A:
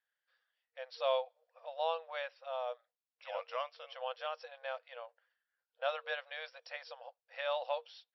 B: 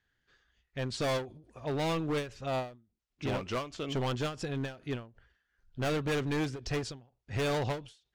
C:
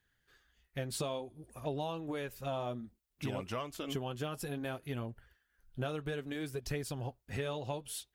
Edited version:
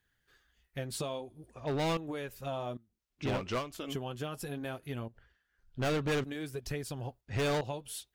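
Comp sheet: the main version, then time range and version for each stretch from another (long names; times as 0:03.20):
C
0:01.51–0:01.97: punch in from B
0:02.77–0:03.72: punch in from B
0:05.08–0:06.24: punch in from B
0:07.21–0:07.61: punch in from B
not used: A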